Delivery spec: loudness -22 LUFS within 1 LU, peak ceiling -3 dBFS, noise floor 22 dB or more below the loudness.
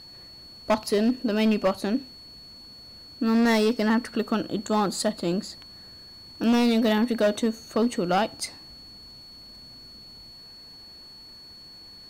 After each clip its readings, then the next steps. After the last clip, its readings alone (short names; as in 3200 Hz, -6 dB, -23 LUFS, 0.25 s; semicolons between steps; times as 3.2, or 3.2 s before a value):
clipped 1.7%; flat tops at -16.5 dBFS; steady tone 4400 Hz; tone level -44 dBFS; loudness -24.5 LUFS; peak -16.5 dBFS; loudness target -22.0 LUFS
-> clip repair -16.5 dBFS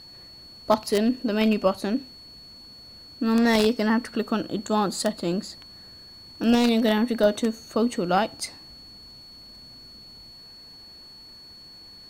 clipped 0.0%; steady tone 4400 Hz; tone level -44 dBFS
-> notch 4400 Hz, Q 30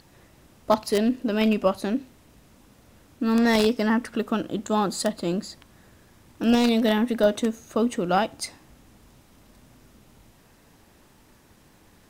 steady tone none; loudness -24.0 LUFS; peak -7.0 dBFS; loudness target -22.0 LUFS
-> gain +2 dB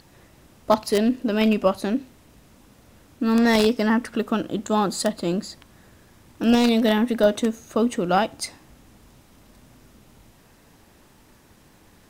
loudness -22.0 LUFS; peak -5.0 dBFS; noise floor -54 dBFS